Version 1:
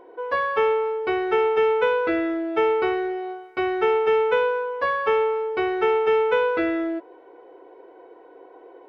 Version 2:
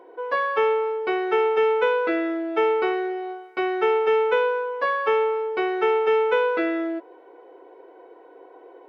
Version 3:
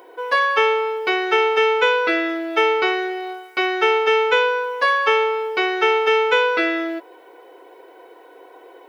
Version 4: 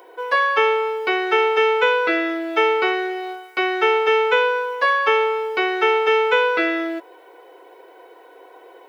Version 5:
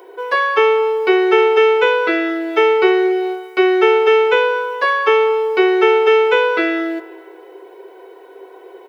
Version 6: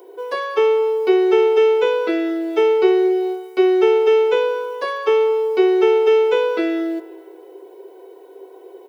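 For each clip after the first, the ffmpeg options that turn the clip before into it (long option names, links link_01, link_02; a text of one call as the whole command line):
ffmpeg -i in.wav -af "highpass=240" out.wav
ffmpeg -i in.wav -af "crystalizer=i=9.5:c=0" out.wav
ffmpeg -i in.wav -filter_complex "[0:a]acrossover=split=260|3300[link_01][link_02][link_03];[link_01]aeval=exprs='val(0)*gte(abs(val(0)),0.00398)':channel_layout=same[link_04];[link_03]alimiter=level_in=6.5dB:limit=-24dB:level=0:latency=1:release=413,volume=-6.5dB[link_05];[link_04][link_02][link_05]amix=inputs=3:normalize=0" out.wav
ffmpeg -i in.wav -filter_complex "[0:a]equalizer=frequency=390:width=6:gain=13.5,asplit=2[link_01][link_02];[link_02]adelay=213,lowpass=frequency=3800:poles=1,volume=-19dB,asplit=2[link_03][link_04];[link_04]adelay=213,lowpass=frequency=3800:poles=1,volume=0.45,asplit=2[link_05][link_06];[link_06]adelay=213,lowpass=frequency=3800:poles=1,volume=0.45,asplit=2[link_07][link_08];[link_08]adelay=213,lowpass=frequency=3800:poles=1,volume=0.45[link_09];[link_01][link_03][link_05][link_07][link_09]amix=inputs=5:normalize=0,volume=1.5dB" out.wav
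ffmpeg -i in.wav -af "highpass=180,equalizer=frequency=1700:width_type=o:width=2.3:gain=-14,volume=2dB" out.wav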